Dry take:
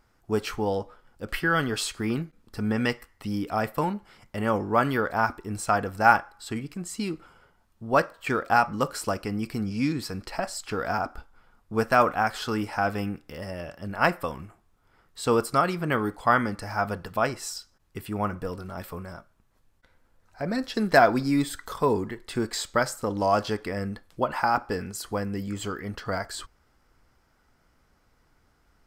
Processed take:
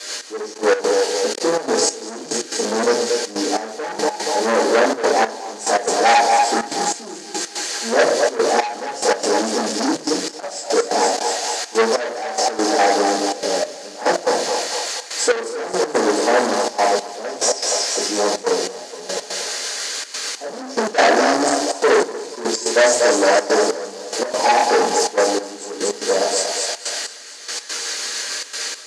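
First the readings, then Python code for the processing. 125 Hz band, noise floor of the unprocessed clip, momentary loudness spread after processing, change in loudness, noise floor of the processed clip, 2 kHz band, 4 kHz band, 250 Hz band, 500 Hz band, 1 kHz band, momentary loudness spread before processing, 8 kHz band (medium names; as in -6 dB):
under -10 dB, -66 dBFS, 10 LU, +8.0 dB, -36 dBFS, +6.5 dB, +15.5 dB, +3.5 dB, +11.0 dB, +7.5 dB, 14 LU, +18.5 dB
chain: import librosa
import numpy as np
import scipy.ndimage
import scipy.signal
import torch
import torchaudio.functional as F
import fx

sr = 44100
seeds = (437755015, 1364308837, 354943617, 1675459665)

p1 = scipy.signal.sosfilt(scipy.signal.ellip(3, 1.0, 40, [890.0, 5500.0], 'bandstop', fs=sr, output='sos'), x)
p2 = fx.quant_dither(p1, sr, seeds[0], bits=6, dither='triangular')
p3 = p1 + (p2 * librosa.db_to_amplitude(-5.5))
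p4 = fx.rotary(p3, sr, hz=6.7)
p5 = p4 + fx.echo_thinned(p4, sr, ms=237, feedback_pct=71, hz=610.0, wet_db=-4.5, dry=0)
p6 = fx.room_shoebox(p5, sr, seeds[1], volume_m3=42.0, walls='mixed', distance_m=2.1)
p7 = 10.0 ** (-16.0 / 20.0) * np.tanh(p6 / 10.0 ** (-16.0 / 20.0))
p8 = fx.cabinet(p7, sr, low_hz=330.0, low_slope=24, high_hz=8500.0, hz=(1700.0, 4500.0, 6500.0), db=(7, 8, 8))
p9 = fx.step_gate(p8, sr, bpm=143, pattern='xx....x.xxxxxxx.', floor_db=-12.0, edge_ms=4.5)
y = p9 * librosa.db_to_amplitude(5.5)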